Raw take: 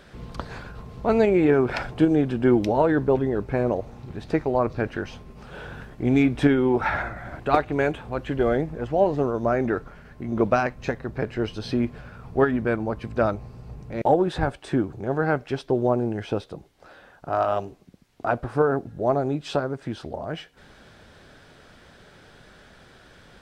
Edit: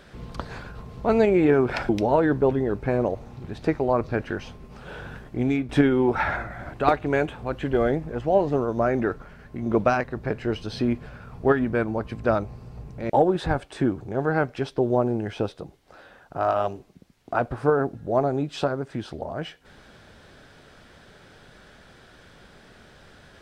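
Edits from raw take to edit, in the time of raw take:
1.89–2.55 cut
5.91–6.35 fade out, to -9.5 dB
10.7–10.96 cut

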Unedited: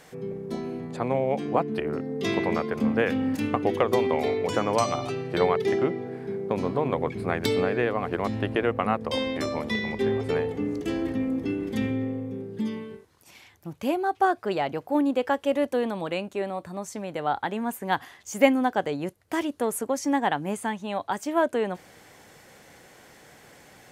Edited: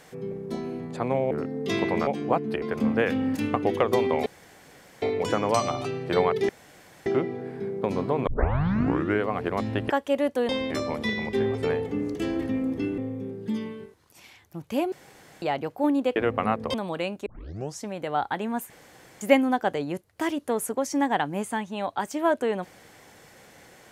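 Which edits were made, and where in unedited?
1.31–1.86 move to 2.62
4.26 insert room tone 0.76 s
5.73 insert room tone 0.57 s
6.94 tape start 1.01 s
8.57–9.15 swap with 15.27–15.86
11.64–12.09 cut
14.03–14.53 room tone
16.38 tape start 0.56 s
17.82–18.33 room tone

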